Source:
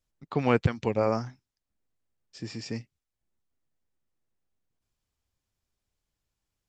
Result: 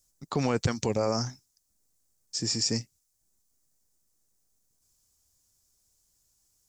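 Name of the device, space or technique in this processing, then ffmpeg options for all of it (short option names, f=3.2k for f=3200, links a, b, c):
over-bright horn tweeter: -af "highshelf=f=4.3k:t=q:w=1.5:g=14,alimiter=limit=-19.5dB:level=0:latency=1:release=37,volume=4dB"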